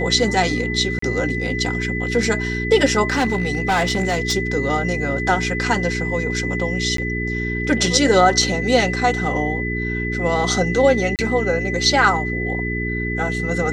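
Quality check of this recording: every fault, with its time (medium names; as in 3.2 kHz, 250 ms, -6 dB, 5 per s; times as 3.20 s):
hum 60 Hz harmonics 7 -25 dBFS
whine 2 kHz -25 dBFS
0.99–1.02 s: dropout 34 ms
3.08–4.35 s: clipped -14 dBFS
6.97–6.98 s: dropout 13 ms
11.16–11.19 s: dropout 28 ms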